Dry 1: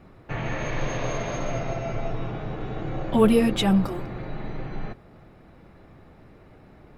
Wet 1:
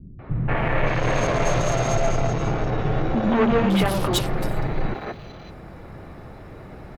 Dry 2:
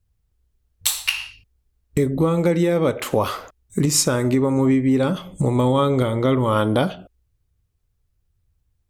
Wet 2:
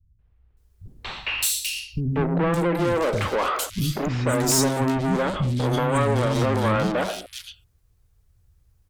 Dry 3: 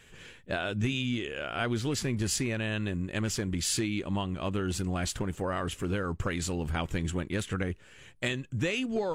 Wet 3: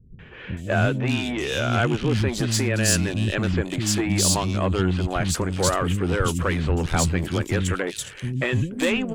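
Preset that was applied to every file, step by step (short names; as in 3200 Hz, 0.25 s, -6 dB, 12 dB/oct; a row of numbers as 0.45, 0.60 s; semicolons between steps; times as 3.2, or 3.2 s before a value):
tube stage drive 27 dB, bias 0.25; three bands offset in time lows, mids, highs 0.19/0.57 s, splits 260/3000 Hz; match loudness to -23 LUFS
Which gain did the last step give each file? +12.0, +8.5, +12.5 dB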